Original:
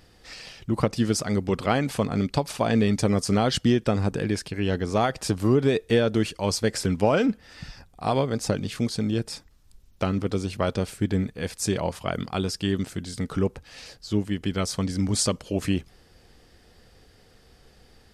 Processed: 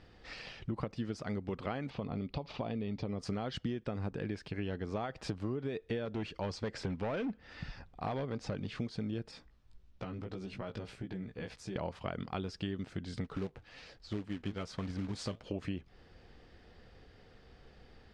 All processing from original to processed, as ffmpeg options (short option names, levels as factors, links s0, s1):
-filter_complex "[0:a]asettb=1/sr,asplit=3[s0][s1][s2];[s0]atrim=end=1.904[s3];[s1]atrim=start=1.9:end=3.2,asetpts=PTS-STARTPTS,afade=t=in:d=0.004:c=qsin,afade=t=out:st=1.296:d=0.004:c=qsin,lowpass=f=4800:w=0.5412,lowpass=f=4800:w=1.3066,equalizer=f=1600:t=o:w=0.57:g=-10,acompressor=threshold=0.0562:ratio=2:attack=3.2:release=140:knee=1:detection=peak[s4];[s2]atrim=start=3.196[s5];[s3][s4]acrossfade=d=0.004:c1=hsin:c2=qsin[s6];[s6][s5]acrossfade=d=0.004:c1=qsin:c2=hsin,asettb=1/sr,asplit=3[s7][s8][s9];[s7]atrim=end=6.054[s10];[s8]atrim=start=6.05:end=8.8,asetpts=PTS-STARTPTS,afade=t=in:d=0.004:c=qsin,afade=t=out:st=2.746:d=0.004:c=qsin,lowpass=8500,asoftclip=type=hard:threshold=0.106[s11];[s9]atrim=start=8.796[s12];[s10][s11]acrossfade=d=0.004:c1=hsin:c2=qsin[s13];[s13][s12]acrossfade=d=0.004:c1=qsin:c2=hsin,asettb=1/sr,asplit=3[s14][s15][s16];[s14]atrim=end=9.314[s17];[s15]atrim=start=9.31:end=11.76,asetpts=PTS-STARTPTS,afade=t=in:d=0.004:c=qsin,afade=t=out:st=2.446:d=0.004:c=qsin,acompressor=threshold=0.0282:ratio=6:attack=3.2:release=140:knee=1:detection=peak,flanger=delay=15.5:depth=2.8:speed=1.7[s18];[s16]atrim=start=11.756[s19];[s17][s18]acrossfade=d=0.004:c1=hsin:c2=qsin[s20];[s20][s19]acrossfade=d=0.004:c1=qsin:c2=hsin,asettb=1/sr,asplit=3[s21][s22][s23];[s21]atrim=end=13.244[s24];[s22]atrim=start=13.24:end=15.44,asetpts=PTS-STARTPTS,afade=t=in:d=0.004:c=qsin,afade=t=out:st=2.196:d=0.004:c=qsin,flanger=delay=0.4:depth=9.8:regen=66:speed=1.2:shape=triangular,acrusher=bits=3:mode=log:mix=0:aa=0.000001[s25];[s23]atrim=start=15.436[s26];[s24][s25]acrossfade=d=0.004:c1=hsin:c2=qsin[s27];[s27][s26]acrossfade=d=0.004:c1=qsin:c2=hsin,lowpass=3400,acompressor=threshold=0.0251:ratio=6,volume=0.75"